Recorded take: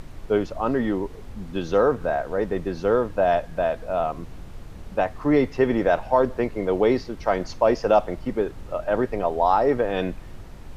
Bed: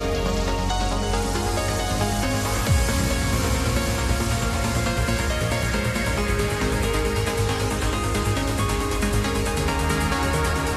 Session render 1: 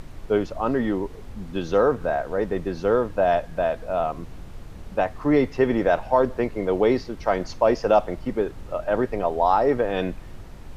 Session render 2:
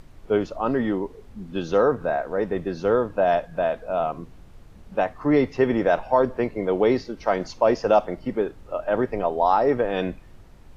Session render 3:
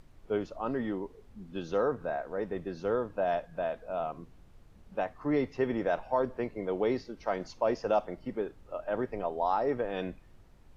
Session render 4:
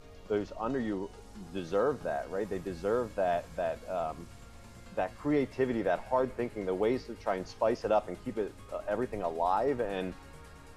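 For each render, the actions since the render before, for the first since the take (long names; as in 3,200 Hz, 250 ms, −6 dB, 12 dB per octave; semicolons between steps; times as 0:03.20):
no processing that can be heard
noise reduction from a noise print 8 dB
level −9.5 dB
mix in bed −29.5 dB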